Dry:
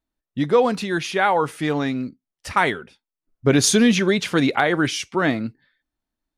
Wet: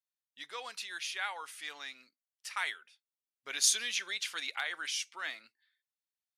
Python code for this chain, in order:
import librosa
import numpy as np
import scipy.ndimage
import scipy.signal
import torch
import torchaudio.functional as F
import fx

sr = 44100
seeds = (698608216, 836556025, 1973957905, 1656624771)

y = scipy.signal.sosfilt(scipy.signal.bessel(2, 2700.0, 'highpass', norm='mag', fs=sr, output='sos'), x)
y = F.gain(torch.from_numpy(y), -6.5).numpy()